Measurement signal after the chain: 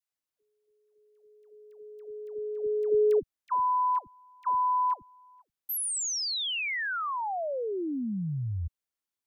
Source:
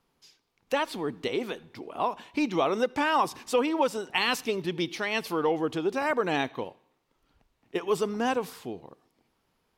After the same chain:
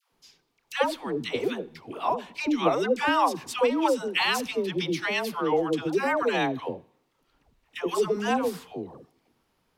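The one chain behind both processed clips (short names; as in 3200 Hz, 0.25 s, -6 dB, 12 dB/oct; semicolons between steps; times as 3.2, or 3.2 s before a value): dispersion lows, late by 0.122 s, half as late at 670 Hz; gain +2 dB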